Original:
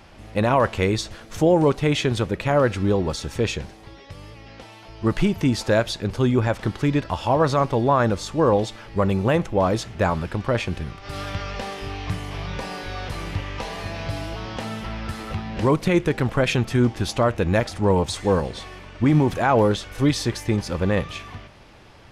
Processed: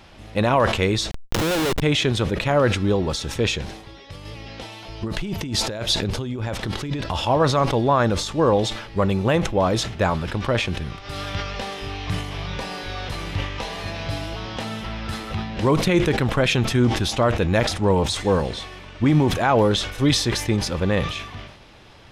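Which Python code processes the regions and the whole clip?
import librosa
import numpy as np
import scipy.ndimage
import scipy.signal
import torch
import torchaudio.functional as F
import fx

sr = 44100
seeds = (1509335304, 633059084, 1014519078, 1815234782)

y = fx.chain(x, sr, fx.highpass(hz=280.0, slope=12),
    fx.schmitt(flips_db=-31.0), at=(1.11, 1.82))
y = fx.chain(y, sr, fx.over_compress(threshold_db=-26.0, ratio=-1.0),
    fx.peak_eq(hz=1400.0, db=-2.5, octaves=1.4), at=(4.25, 7.25))
y = fx.peak_eq(y, sr, hz=3800.0, db=5.0, octaves=0.94)
y = fx.notch(y, sr, hz=4500.0, q=20.0)
y = fx.sustainer(y, sr, db_per_s=71.0)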